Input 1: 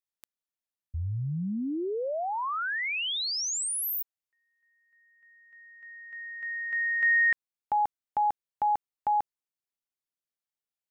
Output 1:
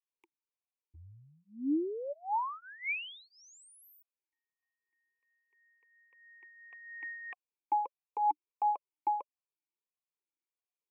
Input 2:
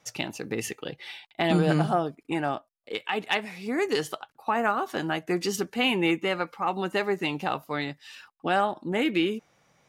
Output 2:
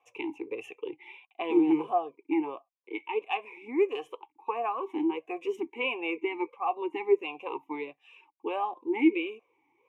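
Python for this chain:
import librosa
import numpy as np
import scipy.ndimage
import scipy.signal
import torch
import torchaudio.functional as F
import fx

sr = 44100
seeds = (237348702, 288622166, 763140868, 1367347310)

y = fx.fixed_phaser(x, sr, hz=930.0, stages=8)
y = fx.vowel_sweep(y, sr, vowels='a-u', hz=1.5)
y = y * 10.0 ** (8.5 / 20.0)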